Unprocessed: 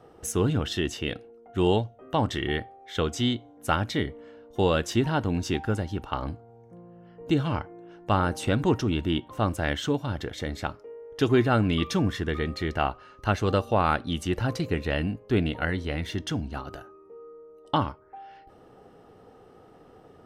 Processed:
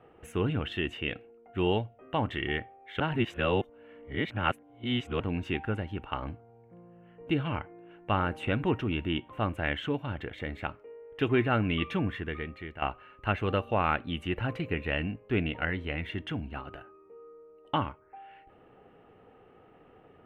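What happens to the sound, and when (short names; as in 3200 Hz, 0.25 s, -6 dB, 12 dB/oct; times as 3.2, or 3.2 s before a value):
3–5.2 reverse
11.99–12.82 fade out linear, to -12 dB
whole clip: resonant high shelf 3700 Hz -13 dB, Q 3; gain -5 dB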